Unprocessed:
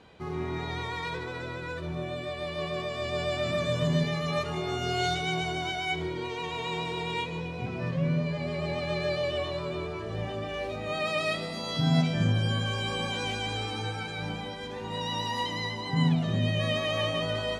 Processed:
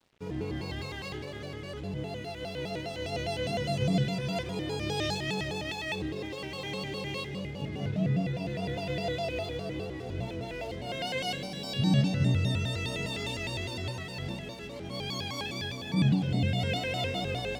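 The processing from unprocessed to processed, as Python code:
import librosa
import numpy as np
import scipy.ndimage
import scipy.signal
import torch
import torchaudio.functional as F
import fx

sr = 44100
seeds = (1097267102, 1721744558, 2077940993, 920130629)

y = fx.peak_eq(x, sr, hz=1200.0, db=-14.5, octaves=0.96)
y = np.sign(y) * np.maximum(np.abs(y) - 10.0 ** (-54.0 / 20.0), 0.0)
y = fx.vibrato_shape(y, sr, shape='square', rate_hz=4.9, depth_cents=250.0)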